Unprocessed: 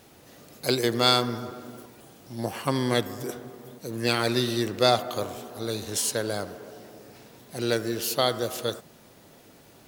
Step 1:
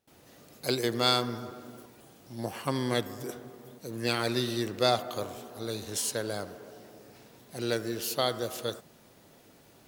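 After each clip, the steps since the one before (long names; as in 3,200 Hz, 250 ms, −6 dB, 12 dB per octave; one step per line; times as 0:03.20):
noise gate with hold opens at −44 dBFS
level −4.5 dB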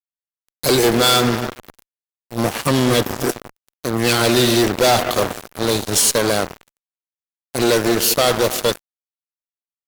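fuzz pedal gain 35 dB, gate −39 dBFS
level +2.5 dB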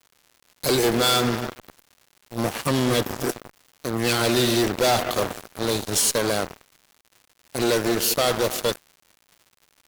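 surface crackle 200 per second −35 dBFS
level −5.5 dB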